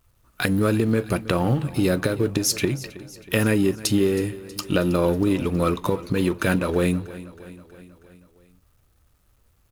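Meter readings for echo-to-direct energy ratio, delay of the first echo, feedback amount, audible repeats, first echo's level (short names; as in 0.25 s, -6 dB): -16.0 dB, 0.32 s, 60%, 4, -18.0 dB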